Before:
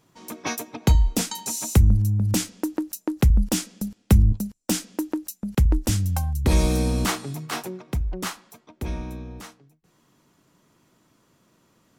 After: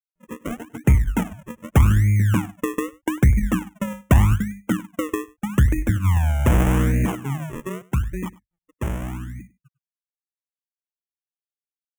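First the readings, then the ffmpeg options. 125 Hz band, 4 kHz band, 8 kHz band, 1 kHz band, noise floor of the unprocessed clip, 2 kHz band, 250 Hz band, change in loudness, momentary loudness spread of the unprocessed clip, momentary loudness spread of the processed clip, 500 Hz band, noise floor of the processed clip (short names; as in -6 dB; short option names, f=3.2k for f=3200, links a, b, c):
+3.5 dB, -7.5 dB, -8.0 dB, +3.5 dB, -65 dBFS, +4.5 dB, +2.5 dB, +2.5 dB, 14 LU, 15 LU, +2.0 dB, under -85 dBFS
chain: -af "aeval=exprs='if(lt(val(0),0),0.708*val(0),val(0))':c=same,aemphasis=mode=reproduction:type=riaa,bandreject=f=50:t=h:w=6,bandreject=f=100:t=h:w=6,bandreject=f=150:t=h:w=6,bandreject=f=200:t=h:w=6,bandreject=f=250:t=h:w=6,bandreject=f=300:t=h:w=6,afftfilt=real='re*gte(hypot(re,im),0.0708)':imag='im*gte(hypot(re,im),0.0708)':win_size=1024:overlap=0.75,highpass=110,highshelf=f=3.3k:g=-3,acrusher=samples=40:mix=1:aa=0.000001:lfo=1:lforange=40:lforate=0.82,asoftclip=type=tanh:threshold=-7dB,asuperstop=centerf=4400:order=4:qfactor=1.3,aecho=1:1:100:0.0841"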